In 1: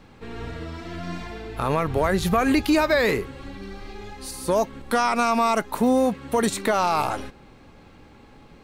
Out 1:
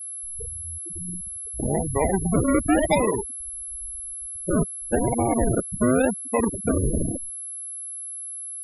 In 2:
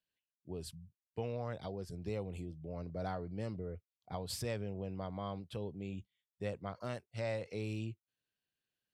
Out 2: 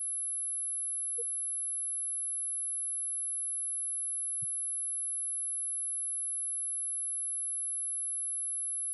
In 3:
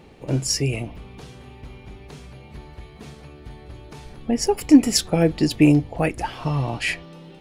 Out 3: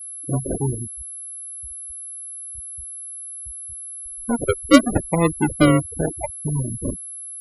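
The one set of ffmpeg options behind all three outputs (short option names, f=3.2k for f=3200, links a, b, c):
-af "acrusher=samples=41:mix=1:aa=0.000001:lfo=1:lforange=24.6:lforate=0.91,aeval=exprs='val(0)+0.0251*sin(2*PI*11000*n/s)':c=same,afftfilt=real='re*gte(hypot(re,im),0.158)':imag='im*gte(hypot(re,im),0.158)':win_size=1024:overlap=0.75"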